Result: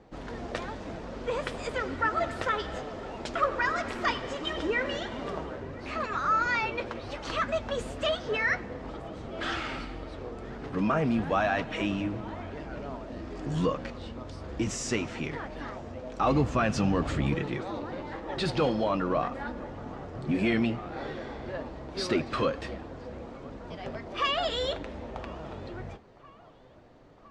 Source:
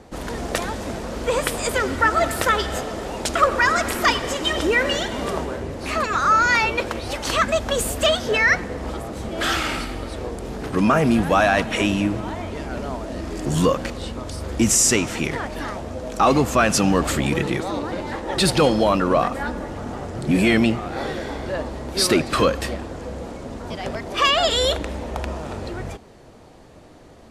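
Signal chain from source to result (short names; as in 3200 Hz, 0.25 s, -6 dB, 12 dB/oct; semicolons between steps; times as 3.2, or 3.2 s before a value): 16.24–17.35 bell 64 Hz +8.5 dB 2.6 oct; on a send: narrowing echo 1.01 s, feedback 72%, band-pass 1000 Hz, level -22 dB; on the sum: flange 1.1 Hz, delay 6 ms, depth 2.8 ms, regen -54%; air absorption 130 m; gain -5 dB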